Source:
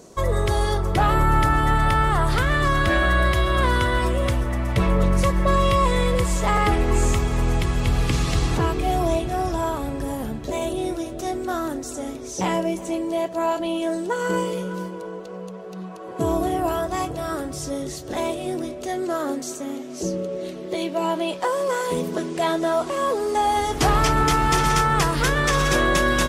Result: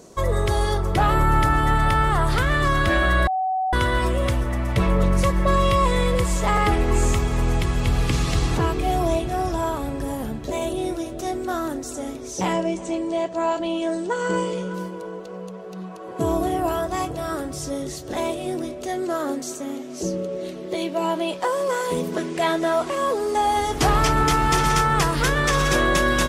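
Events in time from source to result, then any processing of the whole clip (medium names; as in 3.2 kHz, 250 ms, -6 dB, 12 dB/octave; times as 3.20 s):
3.27–3.73 s: bleep 753 Hz -20 dBFS
12.53–14.74 s: steep low-pass 8.9 kHz 48 dB/octave
22.12–22.95 s: peaking EQ 2.1 kHz +4.5 dB 0.99 oct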